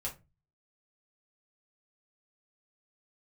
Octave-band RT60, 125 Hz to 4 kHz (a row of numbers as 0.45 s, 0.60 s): 0.55 s, 0.40 s, 0.30 s, 0.20 s, 0.20 s, 0.15 s